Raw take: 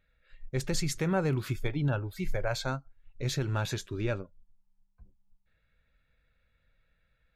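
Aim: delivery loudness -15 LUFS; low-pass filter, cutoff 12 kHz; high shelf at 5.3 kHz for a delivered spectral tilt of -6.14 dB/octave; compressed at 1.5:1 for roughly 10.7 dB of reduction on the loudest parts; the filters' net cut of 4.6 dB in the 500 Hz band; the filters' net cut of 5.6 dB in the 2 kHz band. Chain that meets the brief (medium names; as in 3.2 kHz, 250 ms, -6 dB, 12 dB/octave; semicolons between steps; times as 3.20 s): low-pass 12 kHz; peaking EQ 500 Hz -5.5 dB; peaking EQ 2 kHz -6.5 dB; treble shelf 5.3 kHz -7.5 dB; compression 1.5:1, threshold -55 dBFS; trim +29 dB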